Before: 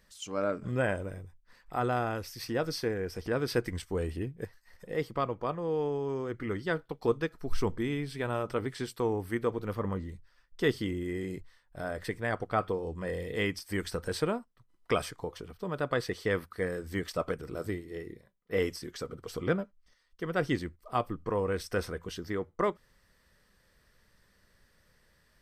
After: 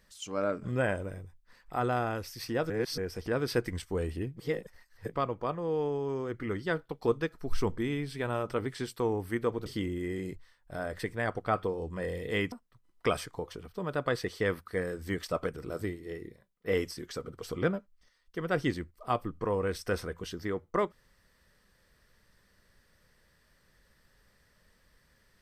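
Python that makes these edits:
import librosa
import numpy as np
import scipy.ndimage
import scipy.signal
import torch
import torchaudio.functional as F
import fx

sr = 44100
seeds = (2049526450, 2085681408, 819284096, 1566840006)

y = fx.edit(x, sr, fx.reverse_span(start_s=2.7, length_s=0.28),
    fx.reverse_span(start_s=4.37, length_s=0.76),
    fx.cut(start_s=9.66, length_s=1.05),
    fx.cut(start_s=13.57, length_s=0.8), tone=tone)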